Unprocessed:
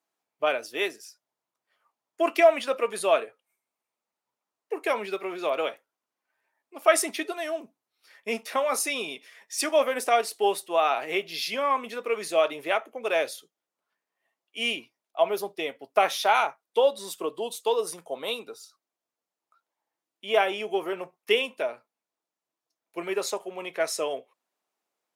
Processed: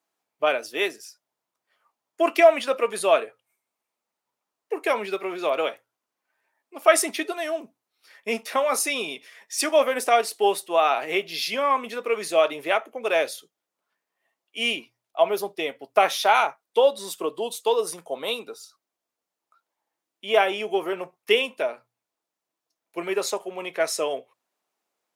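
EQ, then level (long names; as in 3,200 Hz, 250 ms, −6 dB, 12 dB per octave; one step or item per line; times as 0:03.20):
mains-hum notches 60/120 Hz
+3.0 dB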